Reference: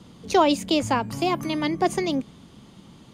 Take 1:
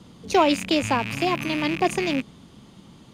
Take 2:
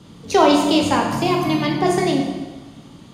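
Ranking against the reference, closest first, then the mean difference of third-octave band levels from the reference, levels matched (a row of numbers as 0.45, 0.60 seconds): 1, 2; 2.0, 5.0 decibels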